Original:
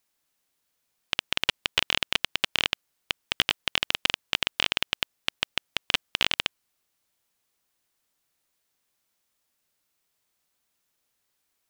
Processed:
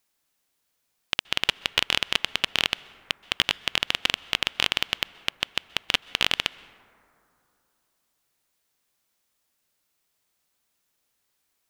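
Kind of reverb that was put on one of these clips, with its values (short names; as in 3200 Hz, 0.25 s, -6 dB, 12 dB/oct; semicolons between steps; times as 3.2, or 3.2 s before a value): plate-style reverb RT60 2.8 s, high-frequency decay 0.3×, pre-delay 0.115 s, DRR 20 dB; gain +1.5 dB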